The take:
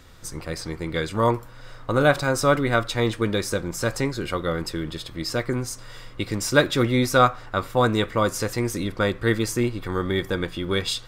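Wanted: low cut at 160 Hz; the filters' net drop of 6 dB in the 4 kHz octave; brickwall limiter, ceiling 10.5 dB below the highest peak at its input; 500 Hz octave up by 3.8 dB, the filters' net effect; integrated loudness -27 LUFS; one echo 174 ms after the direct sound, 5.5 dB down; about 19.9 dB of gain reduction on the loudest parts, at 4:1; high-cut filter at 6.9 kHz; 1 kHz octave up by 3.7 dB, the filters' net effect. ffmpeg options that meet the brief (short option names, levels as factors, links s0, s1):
-af "highpass=160,lowpass=6900,equalizer=f=500:t=o:g=3.5,equalizer=f=1000:t=o:g=4.5,equalizer=f=4000:t=o:g=-7,acompressor=threshold=0.02:ratio=4,alimiter=level_in=1.5:limit=0.0631:level=0:latency=1,volume=0.668,aecho=1:1:174:0.531,volume=3.98"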